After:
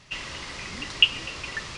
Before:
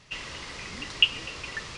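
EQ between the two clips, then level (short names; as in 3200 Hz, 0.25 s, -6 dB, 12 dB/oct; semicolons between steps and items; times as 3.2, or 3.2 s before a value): notch 460 Hz, Q 12; +2.5 dB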